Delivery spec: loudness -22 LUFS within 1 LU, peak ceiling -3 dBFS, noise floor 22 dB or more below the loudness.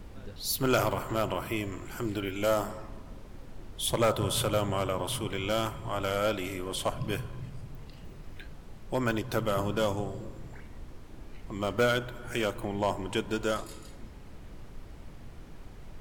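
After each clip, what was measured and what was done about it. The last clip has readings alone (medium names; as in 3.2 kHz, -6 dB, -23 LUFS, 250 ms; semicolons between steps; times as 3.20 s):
clipped samples 0.3%; clipping level -18.5 dBFS; noise floor -47 dBFS; noise floor target -53 dBFS; loudness -31.0 LUFS; peak level -18.5 dBFS; loudness target -22.0 LUFS
-> clip repair -18.5 dBFS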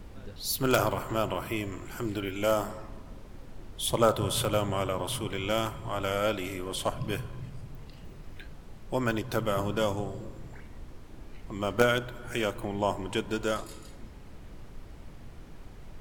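clipped samples 0.0%; noise floor -47 dBFS; noise floor target -52 dBFS
-> noise print and reduce 6 dB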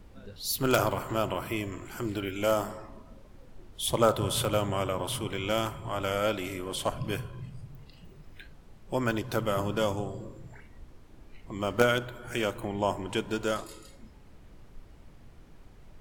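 noise floor -53 dBFS; loudness -30.0 LUFS; peak level -9.5 dBFS; loudness target -22.0 LUFS
-> trim +8 dB; peak limiter -3 dBFS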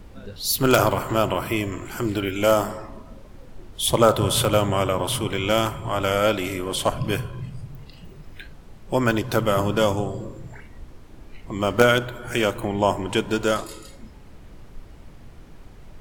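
loudness -22.5 LUFS; peak level -3.0 dBFS; noise floor -45 dBFS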